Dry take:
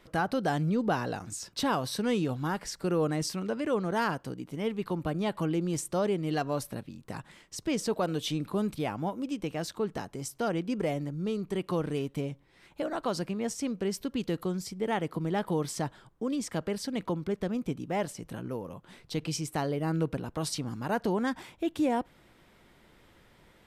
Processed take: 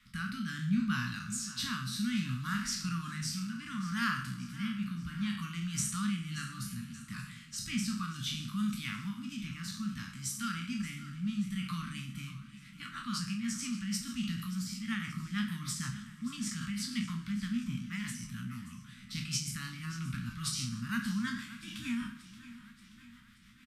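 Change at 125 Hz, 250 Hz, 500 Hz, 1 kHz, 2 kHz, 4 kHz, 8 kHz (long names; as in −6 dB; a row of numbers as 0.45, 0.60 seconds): −3.0 dB, −3.5 dB, below −40 dB, −10.0 dB, 0.0 dB, +1.0 dB, +1.5 dB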